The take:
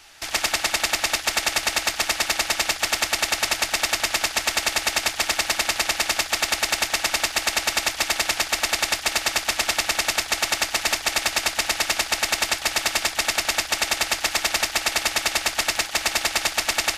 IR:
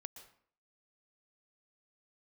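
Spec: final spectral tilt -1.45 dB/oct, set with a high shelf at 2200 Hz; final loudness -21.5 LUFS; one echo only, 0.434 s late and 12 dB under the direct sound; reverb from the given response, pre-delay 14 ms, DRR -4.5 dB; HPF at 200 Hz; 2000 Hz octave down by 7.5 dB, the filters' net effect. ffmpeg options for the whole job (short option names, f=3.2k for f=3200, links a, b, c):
-filter_complex "[0:a]highpass=200,equalizer=f=2k:t=o:g=-5,highshelf=f=2.2k:g=-7.5,aecho=1:1:434:0.251,asplit=2[a][b];[1:a]atrim=start_sample=2205,adelay=14[c];[b][c]afir=irnorm=-1:irlink=0,volume=9.5dB[d];[a][d]amix=inputs=2:normalize=0,volume=0.5dB"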